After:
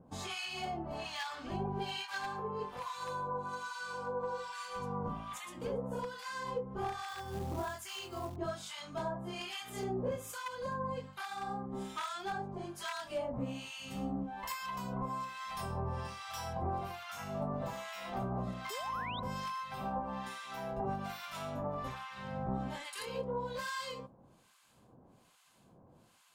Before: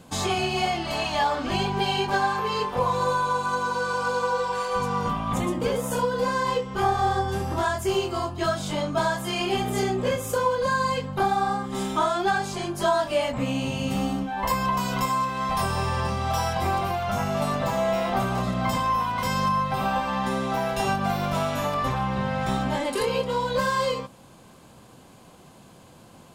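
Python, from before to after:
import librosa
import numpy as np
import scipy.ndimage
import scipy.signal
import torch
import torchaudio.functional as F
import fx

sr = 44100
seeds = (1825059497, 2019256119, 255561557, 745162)

y = np.minimum(x, 2.0 * 10.0 ** (-16.5 / 20.0) - x)
y = fx.harmonic_tremolo(y, sr, hz=1.2, depth_pct=100, crossover_hz=1100.0)
y = fx.quant_float(y, sr, bits=2, at=(7.08, 8.36))
y = fx.spec_paint(y, sr, seeds[0], shape='rise', start_s=18.7, length_s=0.5, low_hz=380.0, high_hz=4000.0, level_db=-36.0)
y = y * 10.0 ** (-9.0 / 20.0)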